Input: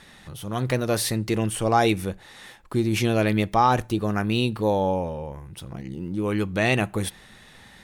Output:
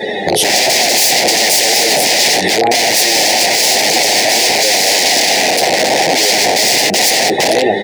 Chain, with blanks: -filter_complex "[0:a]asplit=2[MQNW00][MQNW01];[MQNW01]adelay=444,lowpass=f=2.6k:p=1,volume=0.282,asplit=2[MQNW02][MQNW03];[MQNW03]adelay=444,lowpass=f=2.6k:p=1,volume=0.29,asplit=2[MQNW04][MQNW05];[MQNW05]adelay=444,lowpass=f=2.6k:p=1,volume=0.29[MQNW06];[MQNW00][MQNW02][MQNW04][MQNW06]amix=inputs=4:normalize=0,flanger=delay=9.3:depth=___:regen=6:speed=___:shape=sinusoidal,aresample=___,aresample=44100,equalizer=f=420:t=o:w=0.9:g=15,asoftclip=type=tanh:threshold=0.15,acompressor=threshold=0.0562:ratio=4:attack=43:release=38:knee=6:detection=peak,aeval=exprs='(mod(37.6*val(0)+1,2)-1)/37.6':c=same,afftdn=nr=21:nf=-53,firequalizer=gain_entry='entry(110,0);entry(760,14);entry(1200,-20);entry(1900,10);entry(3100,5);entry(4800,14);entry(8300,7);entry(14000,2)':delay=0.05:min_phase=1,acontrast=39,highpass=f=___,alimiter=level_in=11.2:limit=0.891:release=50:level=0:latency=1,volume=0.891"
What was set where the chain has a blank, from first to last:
3.8, 0.75, 32000, 170